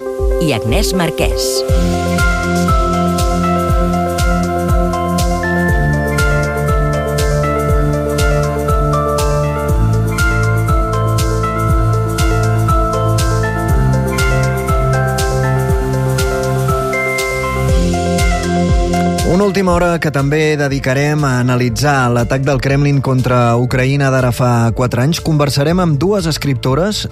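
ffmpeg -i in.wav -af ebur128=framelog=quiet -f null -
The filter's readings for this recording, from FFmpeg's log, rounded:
Integrated loudness:
  I:         -14.0 LUFS
  Threshold: -24.0 LUFS
Loudness range:
  LRA:         1.6 LU
  Threshold: -34.0 LUFS
  LRA low:   -14.6 LUFS
  LRA high:  -13.0 LUFS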